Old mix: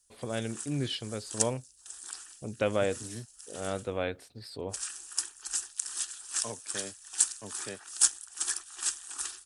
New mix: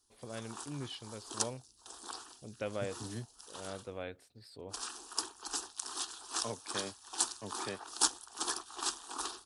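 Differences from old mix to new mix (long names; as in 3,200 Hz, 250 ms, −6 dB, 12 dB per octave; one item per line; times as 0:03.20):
first voice −10.0 dB
background: add octave-band graphic EQ 125/250/500/1,000/2,000/4,000/8,000 Hz +9/+9/+10/+12/−11/+7/−10 dB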